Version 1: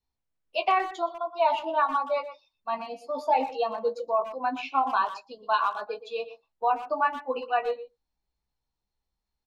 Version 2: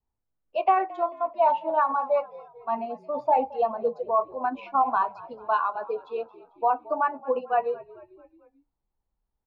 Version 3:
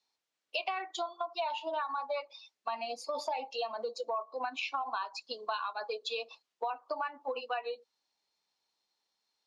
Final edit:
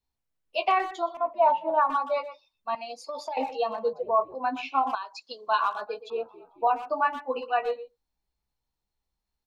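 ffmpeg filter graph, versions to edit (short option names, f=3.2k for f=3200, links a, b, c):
-filter_complex "[1:a]asplit=3[a][b][c];[2:a]asplit=2[d][e];[0:a]asplit=6[f][g][h][i][j][k];[f]atrim=end=1.172[l];[a]atrim=start=1.168:end=1.902[m];[g]atrim=start=1.898:end=2.752[n];[d]atrim=start=2.748:end=3.372[o];[h]atrim=start=3.368:end=3.932[p];[b]atrim=start=3.928:end=4.352[q];[i]atrim=start=4.348:end=4.952[r];[e]atrim=start=4.948:end=5.482[s];[j]atrim=start=5.478:end=6.102[t];[c]atrim=start=6.098:end=6.672[u];[k]atrim=start=6.668[v];[l][m]acrossfade=d=0.004:c1=hsin:c2=hsin[w];[w][n]acrossfade=d=0.004:c1=hsin:c2=hsin[x];[x][o]acrossfade=d=0.004:c1=hsin:c2=hsin[y];[y][p]acrossfade=d=0.004:c1=hsin:c2=hsin[z];[z][q]acrossfade=d=0.004:c1=hsin:c2=hsin[aa];[aa][r]acrossfade=d=0.004:c1=hsin:c2=hsin[ab];[ab][s]acrossfade=d=0.004:c1=hsin:c2=hsin[ac];[ac][t]acrossfade=d=0.004:c1=hsin:c2=hsin[ad];[ad][u]acrossfade=d=0.004:c1=hsin:c2=hsin[ae];[ae][v]acrossfade=d=0.004:c1=hsin:c2=hsin"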